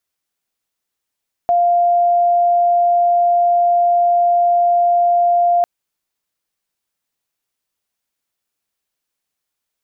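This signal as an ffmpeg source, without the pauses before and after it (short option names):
-f lavfi -i "aevalsrc='0.299*sin(2*PI*698*t)':d=4.15:s=44100"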